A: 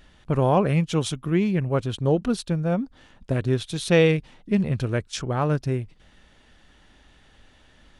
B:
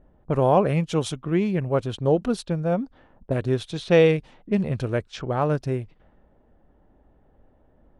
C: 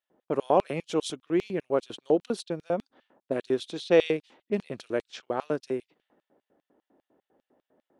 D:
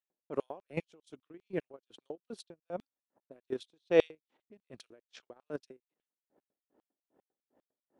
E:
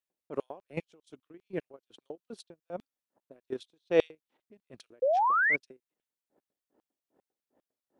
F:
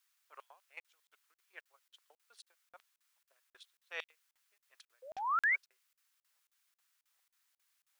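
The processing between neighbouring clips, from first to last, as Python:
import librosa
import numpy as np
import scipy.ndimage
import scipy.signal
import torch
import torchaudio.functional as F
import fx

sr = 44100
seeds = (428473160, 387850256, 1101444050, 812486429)

y1 = fx.env_lowpass(x, sr, base_hz=610.0, full_db=-21.0)
y1 = fx.peak_eq(y1, sr, hz=610.0, db=5.5, octaves=1.7)
y1 = F.gain(torch.from_numpy(y1), -2.5).numpy()
y2 = fx.filter_lfo_highpass(y1, sr, shape='square', hz=5.0, low_hz=310.0, high_hz=3500.0, q=1.4)
y2 = F.gain(torch.from_numpy(y2), -4.5).numpy()
y3 = fx.transient(y2, sr, attack_db=3, sustain_db=-10)
y3 = fx.level_steps(y3, sr, step_db=10)
y3 = y3 * 10.0 ** (-33 * (0.5 - 0.5 * np.cos(2.0 * np.pi * 2.5 * np.arange(len(y3)) / sr)) / 20.0)
y3 = F.gain(torch.from_numpy(y3), 1.5).numpy()
y4 = fx.spec_paint(y3, sr, seeds[0], shape='rise', start_s=5.02, length_s=0.54, low_hz=490.0, high_hz=2300.0, level_db=-25.0)
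y5 = fx.quant_dither(y4, sr, seeds[1], bits=12, dither='triangular')
y5 = fx.ladder_highpass(y5, sr, hz=1000.0, resonance_pct=25)
y5 = fx.buffer_crackle(y5, sr, first_s=0.8, period_s=0.27, block=2048, kind='zero')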